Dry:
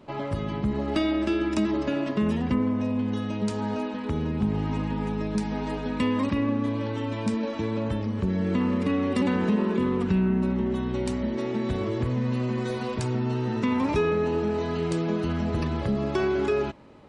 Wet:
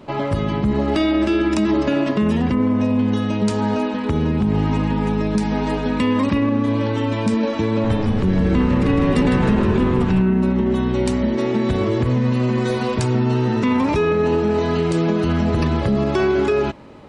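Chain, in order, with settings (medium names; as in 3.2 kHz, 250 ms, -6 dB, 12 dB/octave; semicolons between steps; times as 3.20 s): peak limiter -19 dBFS, peak gain reduction 6 dB; 7.68–10.22 s: frequency-shifting echo 156 ms, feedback 58%, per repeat -120 Hz, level -5.5 dB; trim +9 dB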